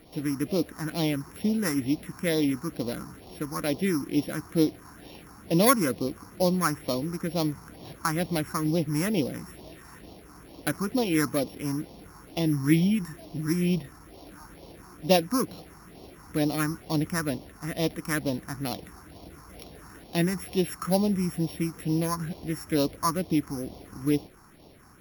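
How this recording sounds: a buzz of ramps at a fixed pitch in blocks of 8 samples; phasing stages 4, 2.2 Hz, lowest notch 550–1500 Hz

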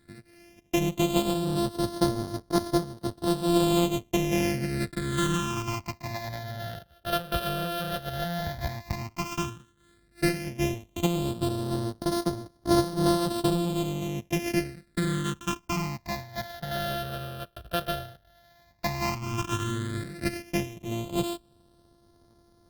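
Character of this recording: a buzz of ramps at a fixed pitch in blocks of 128 samples; phasing stages 8, 0.1 Hz, lowest notch 280–2500 Hz; Opus

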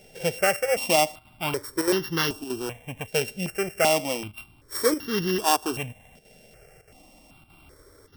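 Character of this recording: a buzz of ramps at a fixed pitch in blocks of 16 samples; chopped level 1.6 Hz, depth 60%, duty 90%; notches that jump at a steady rate 2.6 Hz 310–2400 Hz

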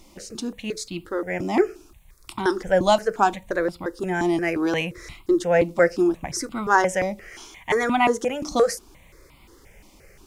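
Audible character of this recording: a quantiser's noise floor 12-bit, dither none; notches that jump at a steady rate 5.7 Hz 440–1700 Hz

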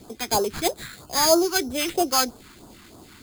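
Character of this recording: aliases and images of a low sample rate 5.7 kHz, jitter 0%; phasing stages 2, 3.1 Hz, lowest notch 540–2100 Hz

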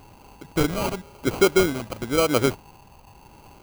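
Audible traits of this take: phasing stages 2, 0.92 Hz, lowest notch 420–4000 Hz; aliases and images of a low sample rate 1.8 kHz, jitter 0%

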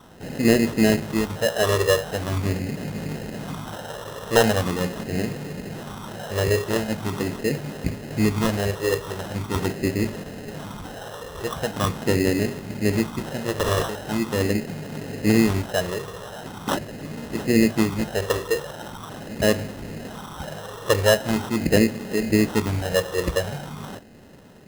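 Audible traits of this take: phasing stages 8, 0.42 Hz, lowest notch 240–1500 Hz; aliases and images of a low sample rate 2.3 kHz, jitter 0%

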